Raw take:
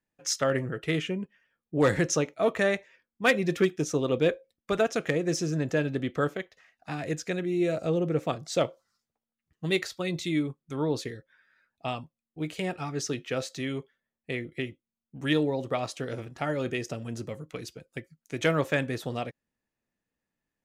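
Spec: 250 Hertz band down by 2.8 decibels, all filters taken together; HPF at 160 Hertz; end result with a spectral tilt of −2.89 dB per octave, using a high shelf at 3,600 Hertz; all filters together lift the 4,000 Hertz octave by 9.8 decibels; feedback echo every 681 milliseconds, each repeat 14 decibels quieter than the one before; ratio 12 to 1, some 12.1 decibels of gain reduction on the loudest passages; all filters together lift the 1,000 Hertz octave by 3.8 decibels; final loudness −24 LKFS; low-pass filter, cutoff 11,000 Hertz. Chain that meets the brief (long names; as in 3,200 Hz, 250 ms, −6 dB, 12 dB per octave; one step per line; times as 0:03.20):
high-pass filter 160 Hz
low-pass filter 11,000 Hz
parametric band 250 Hz −3.5 dB
parametric band 1,000 Hz +4.5 dB
high-shelf EQ 3,600 Hz +8 dB
parametric band 4,000 Hz +7 dB
downward compressor 12 to 1, threshold −26 dBFS
repeating echo 681 ms, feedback 20%, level −14 dB
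level +8.5 dB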